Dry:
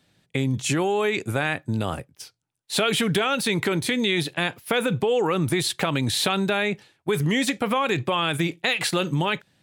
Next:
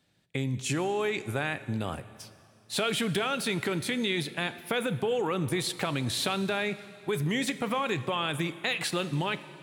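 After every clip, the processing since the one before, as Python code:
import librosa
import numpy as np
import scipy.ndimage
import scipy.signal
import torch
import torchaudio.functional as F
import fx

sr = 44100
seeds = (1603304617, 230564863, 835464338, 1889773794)

y = fx.rev_plate(x, sr, seeds[0], rt60_s=2.6, hf_ratio=0.95, predelay_ms=0, drr_db=13.5)
y = y * 10.0 ** (-6.5 / 20.0)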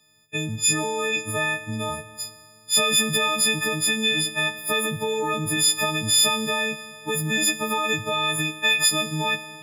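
y = fx.freq_snap(x, sr, grid_st=6)
y = y * 10.0 ** (1.5 / 20.0)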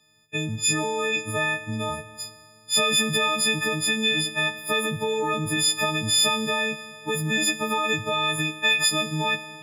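y = fx.high_shelf(x, sr, hz=9200.0, db=-8.5)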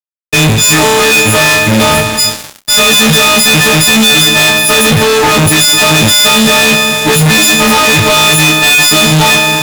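y = fx.fuzz(x, sr, gain_db=46.0, gate_db=-46.0)
y = fx.doubler(y, sr, ms=31.0, db=-11)
y = y * 10.0 ** (7.0 / 20.0)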